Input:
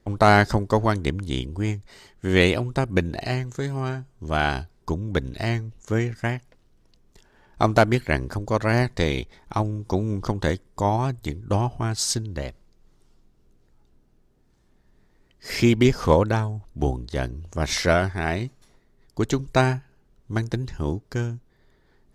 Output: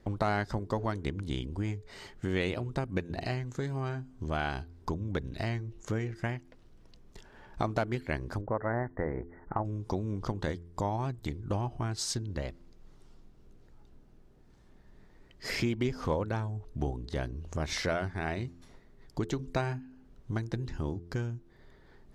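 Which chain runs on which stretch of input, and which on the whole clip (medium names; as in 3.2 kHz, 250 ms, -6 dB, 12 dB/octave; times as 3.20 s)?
8.41–9.65 s: dynamic bell 860 Hz, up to +6 dB, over -39 dBFS, Q 1.4 + rippled Chebyshev low-pass 2 kHz, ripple 3 dB
whole clip: treble shelf 6 kHz -8 dB; de-hum 85.84 Hz, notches 5; compression 2.5:1, threshold -39 dBFS; trim +3.5 dB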